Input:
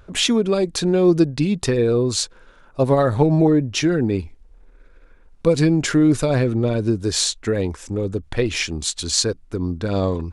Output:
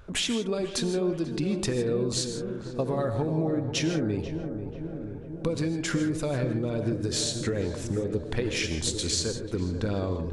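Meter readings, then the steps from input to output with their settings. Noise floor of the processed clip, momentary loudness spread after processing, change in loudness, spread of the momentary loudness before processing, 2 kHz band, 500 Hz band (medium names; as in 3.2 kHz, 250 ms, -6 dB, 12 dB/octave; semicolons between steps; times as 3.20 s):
-38 dBFS, 7 LU, -9.5 dB, 9 LU, -7.0 dB, -9.5 dB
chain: compression, threshold -24 dBFS, peak gain reduction 13 dB; filtered feedback delay 489 ms, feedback 77%, low-pass 1.1 kHz, level -8.5 dB; gated-style reverb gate 180 ms rising, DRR 8.5 dB; trim -2 dB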